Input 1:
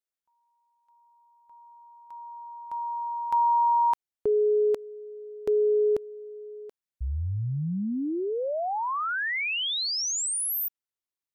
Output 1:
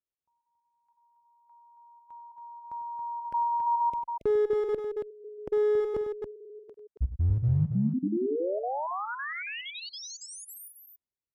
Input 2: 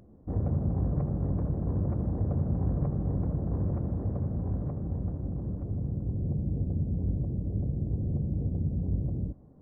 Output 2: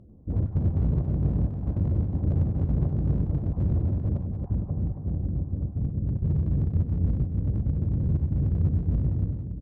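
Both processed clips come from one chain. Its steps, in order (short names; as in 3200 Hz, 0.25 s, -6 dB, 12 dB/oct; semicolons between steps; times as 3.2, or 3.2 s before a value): random spectral dropouts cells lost 23%; HPF 62 Hz 6 dB/oct; tilt -3.5 dB/oct; one-sided clip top -17.5 dBFS, bottom -10.5 dBFS; on a send: tapped delay 47/98/277 ms -17.5/-12/-6 dB; on the sum: gain -5 dB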